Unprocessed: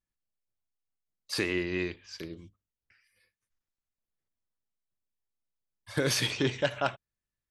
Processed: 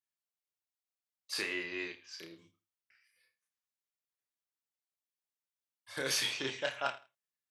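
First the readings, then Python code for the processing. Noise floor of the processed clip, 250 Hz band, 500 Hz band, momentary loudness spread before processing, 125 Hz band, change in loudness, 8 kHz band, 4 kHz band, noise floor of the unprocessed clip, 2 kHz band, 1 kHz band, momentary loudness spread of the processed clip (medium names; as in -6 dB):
under -85 dBFS, -12.5 dB, -8.5 dB, 15 LU, -18.0 dB, -5.0 dB, -2.5 dB, -3.0 dB, under -85 dBFS, -3.5 dB, -4.5 dB, 17 LU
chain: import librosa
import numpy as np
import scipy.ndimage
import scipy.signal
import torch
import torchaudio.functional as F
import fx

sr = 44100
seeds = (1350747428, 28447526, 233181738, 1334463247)

p1 = fx.highpass(x, sr, hz=880.0, slope=6)
p2 = fx.doubler(p1, sr, ms=30.0, db=-4.0)
p3 = p2 + fx.echo_feedback(p2, sr, ms=81, feedback_pct=21, wet_db=-17.5, dry=0)
y = p3 * 10.0 ** (-4.0 / 20.0)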